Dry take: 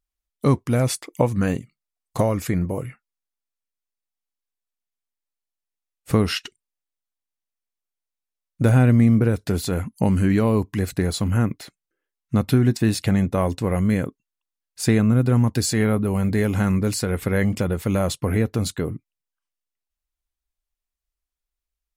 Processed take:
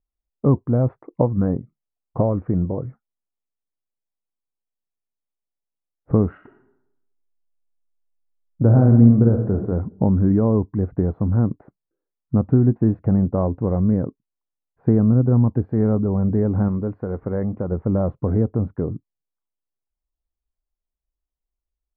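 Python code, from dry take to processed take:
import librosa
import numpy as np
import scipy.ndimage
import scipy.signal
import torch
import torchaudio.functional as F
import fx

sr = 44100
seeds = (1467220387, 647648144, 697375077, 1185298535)

y = fx.reverb_throw(x, sr, start_s=6.31, length_s=3.26, rt60_s=0.83, drr_db=4.0)
y = fx.low_shelf(y, sr, hz=330.0, db=-6.5, at=(16.68, 17.72))
y = scipy.signal.sosfilt(scipy.signal.bessel(6, 730.0, 'lowpass', norm='mag', fs=sr, output='sos'), y)
y = F.gain(torch.from_numpy(y), 2.0).numpy()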